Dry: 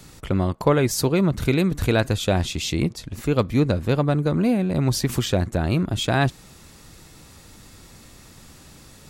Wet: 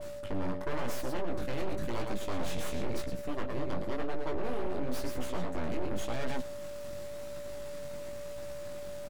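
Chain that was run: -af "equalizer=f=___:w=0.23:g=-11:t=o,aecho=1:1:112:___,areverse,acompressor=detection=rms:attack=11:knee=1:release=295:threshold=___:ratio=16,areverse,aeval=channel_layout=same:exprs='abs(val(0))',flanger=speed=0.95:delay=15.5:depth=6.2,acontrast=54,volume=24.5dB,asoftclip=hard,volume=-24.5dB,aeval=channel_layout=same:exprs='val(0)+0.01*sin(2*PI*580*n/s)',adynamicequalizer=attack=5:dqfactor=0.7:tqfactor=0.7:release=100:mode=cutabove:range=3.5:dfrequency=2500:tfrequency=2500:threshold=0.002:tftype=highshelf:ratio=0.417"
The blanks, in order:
310, 0.316, -27dB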